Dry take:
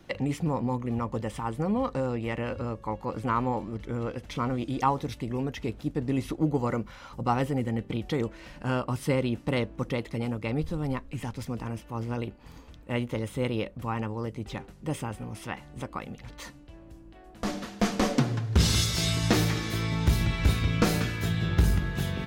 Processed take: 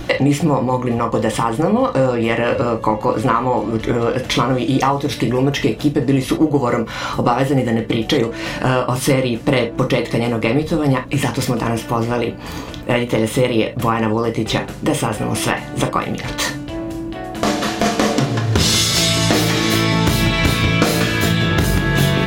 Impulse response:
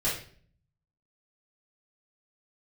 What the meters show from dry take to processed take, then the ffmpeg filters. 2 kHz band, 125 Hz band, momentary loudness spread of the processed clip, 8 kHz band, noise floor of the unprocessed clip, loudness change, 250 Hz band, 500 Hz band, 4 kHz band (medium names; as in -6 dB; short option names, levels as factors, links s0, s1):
+15.0 dB, +9.5 dB, 6 LU, +14.0 dB, -50 dBFS, +12.0 dB, +12.5 dB, +14.5 dB, +14.5 dB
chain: -filter_complex "[0:a]highpass=f=260:p=1,acompressor=threshold=0.0112:ratio=4,aeval=exprs='val(0)+0.00224*(sin(2*PI*60*n/s)+sin(2*PI*2*60*n/s)/2+sin(2*PI*3*60*n/s)/3+sin(2*PI*4*60*n/s)/4+sin(2*PI*5*60*n/s)/5)':c=same,asplit=2[s0][s1];[1:a]atrim=start_sample=2205,atrim=end_sample=3087[s2];[s1][s2]afir=irnorm=-1:irlink=0,volume=0.282[s3];[s0][s3]amix=inputs=2:normalize=0,alimiter=level_in=14.1:limit=0.891:release=50:level=0:latency=1,volume=0.891"